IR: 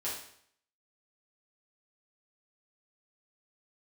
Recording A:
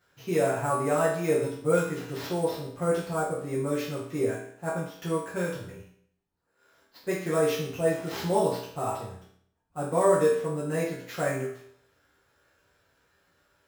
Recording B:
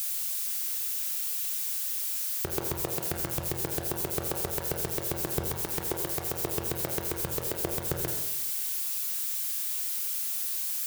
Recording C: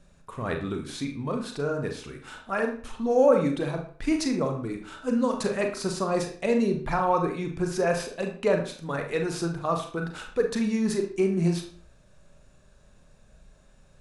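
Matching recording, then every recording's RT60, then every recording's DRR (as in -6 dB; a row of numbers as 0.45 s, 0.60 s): A; 0.65 s, 0.95 s, 0.45 s; -8.5 dB, 1.0 dB, 3.0 dB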